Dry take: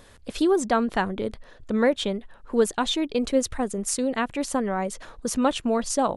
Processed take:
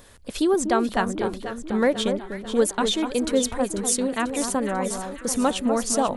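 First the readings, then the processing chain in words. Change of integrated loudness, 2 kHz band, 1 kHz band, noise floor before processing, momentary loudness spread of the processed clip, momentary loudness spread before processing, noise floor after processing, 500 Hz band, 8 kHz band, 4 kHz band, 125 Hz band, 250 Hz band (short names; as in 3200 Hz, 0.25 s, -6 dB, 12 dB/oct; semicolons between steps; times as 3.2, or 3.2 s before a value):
+1.5 dB, +1.0 dB, +1.0 dB, -50 dBFS, 7 LU, 8 LU, -42 dBFS, +1.0 dB, +5.0 dB, +2.0 dB, +1.0 dB, +1.0 dB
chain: high shelf 8500 Hz +9.5 dB; on a send: echo with dull and thin repeats by turns 0.246 s, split 1400 Hz, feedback 73%, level -7 dB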